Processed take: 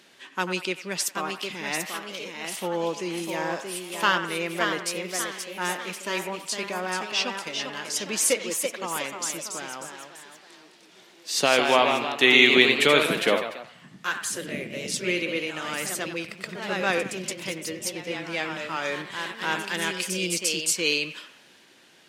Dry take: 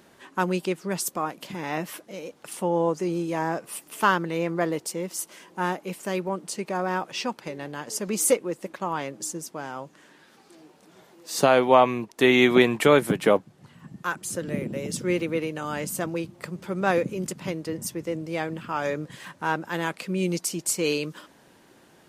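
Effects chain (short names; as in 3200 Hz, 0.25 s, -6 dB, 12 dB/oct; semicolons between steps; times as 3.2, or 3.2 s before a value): weighting filter D; echoes that change speed 0.799 s, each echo +1 st, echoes 3, each echo -6 dB; on a send: band-limited delay 92 ms, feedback 42%, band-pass 1400 Hz, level -9.5 dB; on the sum: gain -4 dB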